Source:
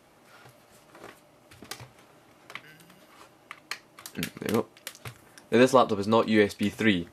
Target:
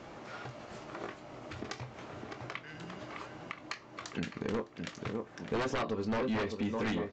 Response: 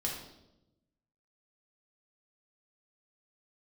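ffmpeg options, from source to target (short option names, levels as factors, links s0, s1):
-filter_complex "[0:a]asplit=2[s0][s1];[s1]adelay=23,volume=0.251[s2];[s0][s2]amix=inputs=2:normalize=0,asplit=2[s3][s4];[s4]adelay=608,lowpass=f=1800:p=1,volume=0.335,asplit=2[s5][s6];[s6]adelay=608,lowpass=f=1800:p=1,volume=0.47,asplit=2[s7][s8];[s8]adelay=608,lowpass=f=1800:p=1,volume=0.47,asplit=2[s9][s10];[s10]adelay=608,lowpass=f=1800:p=1,volume=0.47,asplit=2[s11][s12];[s12]adelay=608,lowpass=f=1800:p=1,volume=0.47[s13];[s3][s5][s7][s9][s11][s13]amix=inputs=6:normalize=0,aresample=16000,aeval=exprs='0.596*sin(PI/2*5.01*val(0)/0.596)':c=same,aresample=44100,acompressor=threshold=0.0224:ratio=2.5,highshelf=f=3000:g=-8,volume=0.447"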